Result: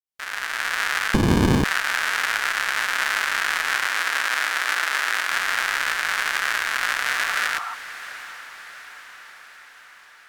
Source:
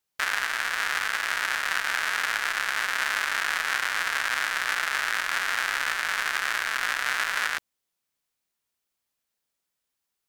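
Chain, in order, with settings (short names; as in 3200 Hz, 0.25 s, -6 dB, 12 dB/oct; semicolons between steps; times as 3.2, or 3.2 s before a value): opening faded in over 0.71 s; 3.87–5.31 brick-wall FIR high-pass 220 Hz; 7.1–7.71 spectral repair 690–1400 Hz before; diffused feedback echo 0.71 s, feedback 60%, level -14 dB; 1.14–1.64 running maximum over 65 samples; gain +3.5 dB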